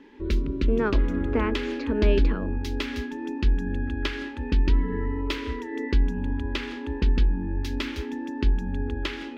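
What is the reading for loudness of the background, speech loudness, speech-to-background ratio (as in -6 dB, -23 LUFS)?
-28.0 LUFS, -29.5 LUFS, -1.5 dB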